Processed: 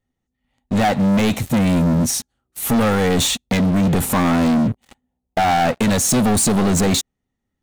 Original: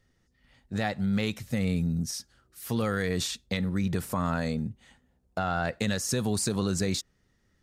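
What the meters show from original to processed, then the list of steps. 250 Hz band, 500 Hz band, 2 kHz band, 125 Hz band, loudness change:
+13.0 dB, +11.5 dB, +9.5 dB, +10.0 dB, +12.5 dB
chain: graphic EQ with 31 bands 250 Hz +8 dB, 800 Hz +9 dB, 1.6 kHz -7 dB, 5 kHz -11 dB; waveshaping leveller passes 5

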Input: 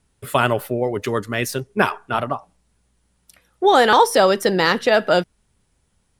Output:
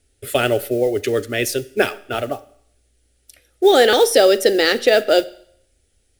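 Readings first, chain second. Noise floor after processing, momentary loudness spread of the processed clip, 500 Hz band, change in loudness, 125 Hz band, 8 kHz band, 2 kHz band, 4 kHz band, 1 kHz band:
-64 dBFS, 12 LU, +3.5 dB, +1.5 dB, -4.0 dB, +4.5 dB, -0.5 dB, +3.5 dB, -5.5 dB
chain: modulation noise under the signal 28 dB; static phaser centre 420 Hz, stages 4; Schroeder reverb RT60 0.67 s, combs from 30 ms, DRR 18 dB; trim +4.5 dB

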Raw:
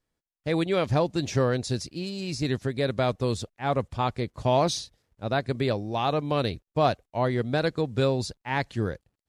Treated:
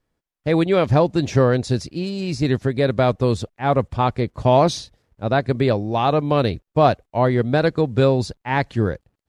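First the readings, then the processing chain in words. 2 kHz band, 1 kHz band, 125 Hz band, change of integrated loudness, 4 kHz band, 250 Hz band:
+5.5 dB, +7.5 dB, +8.0 dB, +7.5 dB, +2.5 dB, +8.0 dB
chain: treble shelf 3 kHz -8.5 dB; trim +8 dB

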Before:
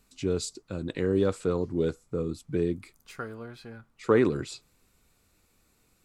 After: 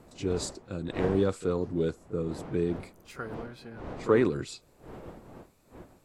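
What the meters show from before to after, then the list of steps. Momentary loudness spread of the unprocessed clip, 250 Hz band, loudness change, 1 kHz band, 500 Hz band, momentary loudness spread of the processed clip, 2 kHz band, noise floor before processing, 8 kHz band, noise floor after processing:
19 LU, -1.0 dB, -1.0 dB, +0.5 dB, -1.0 dB, 21 LU, -1.0 dB, -68 dBFS, -1.5 dB, -62 dBFS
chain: wind noise 520 Hz -42 dBFS; reverse echo 30 ms -14 dB; trim -1.5 dB

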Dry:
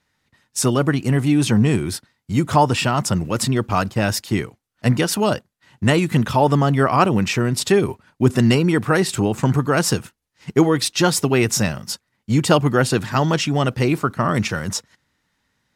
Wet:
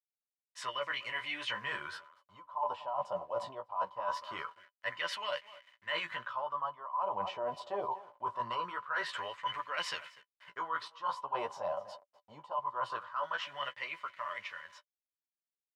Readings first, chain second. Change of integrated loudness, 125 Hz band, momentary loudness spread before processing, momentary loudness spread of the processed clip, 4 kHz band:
-19.0 dB, under -40 dB, 8 LU, 10 LU, -15.0 dB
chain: fade out at the end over 4.55 s; graphic EQ 250/1000/4000 Hz -8/+7/+9 dB; on a send: delay 246 ms -23.5 dB; on the sum: bit crusher 7-bit; bass shelf 110 Hz +7 dB; flange 0.42 Hz, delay 9.5 ms, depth 9.1 ms, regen +16%; wah-wah 0.23 Hz 730–2100 Hz, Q 4.6; small resonant body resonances 580/1000/3000 Hz, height 17 dB, ringing for 55 ms; reverse; compression 20:1, threshold -32 dBFS, peak gain reduction 29 dB; reverse

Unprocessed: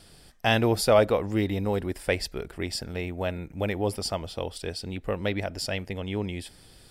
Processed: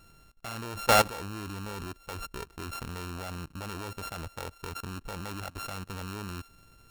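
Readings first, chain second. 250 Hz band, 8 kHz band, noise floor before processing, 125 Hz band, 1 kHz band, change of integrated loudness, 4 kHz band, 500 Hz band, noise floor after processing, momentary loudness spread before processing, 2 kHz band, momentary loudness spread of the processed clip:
-10.5 dB, -1.0 dB, -54 dBFS, -7.5 dB, +0.5 dB, -5.5 dB, -4.5 dB, -10.0 dB, -59 dBFS, 13 LU, -3.5 dB, 16 LU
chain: sorted samples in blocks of 32 samples; bass shelf 110 Hz +3.5 dB; level held to a coarse grid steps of 19 dB

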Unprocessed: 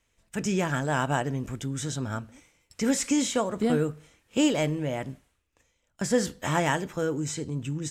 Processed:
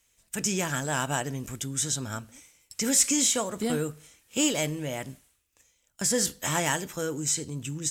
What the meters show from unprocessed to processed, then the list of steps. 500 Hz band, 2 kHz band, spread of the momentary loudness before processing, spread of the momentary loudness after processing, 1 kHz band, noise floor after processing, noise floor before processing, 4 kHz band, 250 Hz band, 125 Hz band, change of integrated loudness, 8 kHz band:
-3.5 dB, -0.5 dB, 10 LU, 13 LU, -3.0 dB, -71 dBFS, -74 dBFS, +4.0 dB, -4.0 dB, -4.0 dB, +1.0 dB, +9.0 dB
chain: Chebyshev shaper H 5 -29 dB, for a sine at -10.5 dBFS; pre-emphasis filter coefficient 0.8; trim +9 dB

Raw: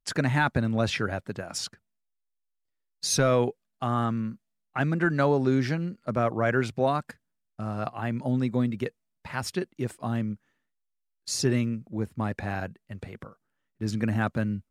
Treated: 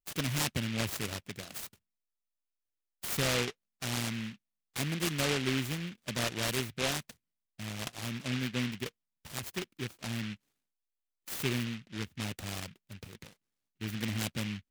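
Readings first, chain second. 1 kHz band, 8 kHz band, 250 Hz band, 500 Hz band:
-12.0 dB, -2.5 dB, -9.0 dB, -11.0 dB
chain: delay time shaken by noise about 2.3 kHz, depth 0.3 ms; trim -8 dB

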